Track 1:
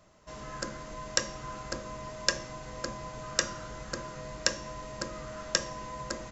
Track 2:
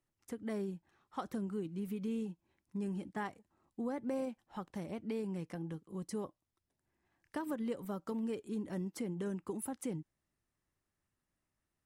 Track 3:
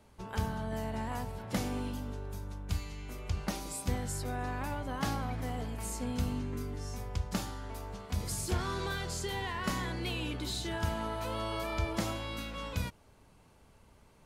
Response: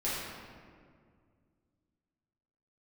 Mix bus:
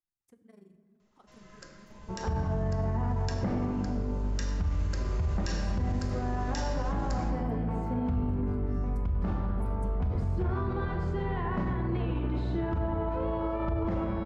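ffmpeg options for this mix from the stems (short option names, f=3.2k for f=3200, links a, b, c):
-filter_complex "[0:a]equalizer=f=3k:w=0.43:g=7,adelay=1000,volume=-11.5dB,afade=t=in:st=4.25:d=0.75:silence=0.354813,asplit=2[a][b];[b]volume=-8dB[c];[1:a]tremolo=f=24:d=0.919,volume=-16.5dB,asplit=2[d][e];[e]volume=-13.5dB[f];[2:a]lowpass=1.2k,adelay=1900,volume=2dB,asplit=2[g][h];[h]volume=-7dB[i];[3:a]atrim=start_sample=2205[j];[c][f][i]amix=inputs=3:normalize=0[k];[k][j]afir=irnorm=-1:irlink=0[l];[a][d][g][l]amix=inputs=4:normalize=0,lowshelf=f=90:g=8,alimiter=limit=-22dB:level=0:latency=1:release=40"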